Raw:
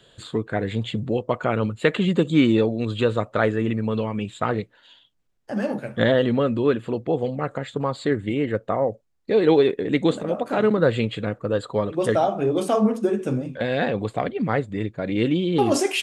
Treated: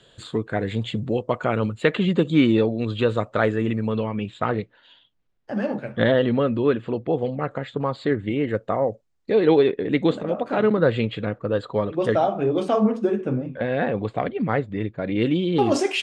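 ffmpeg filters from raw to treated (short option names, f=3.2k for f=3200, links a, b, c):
-af "asetnsamples=n=441:p=0,asendcmd='1.82 lowpass f 5200;3.09 lowpass f 8500;3.92 lowpass f 4100;8.49 lowpass f 8900;9.31 lowpass f 4200;13.21 lowpass f 2200;13.97 lowpass f 3600;15.22 lowpass f 5900',lowpass=10k"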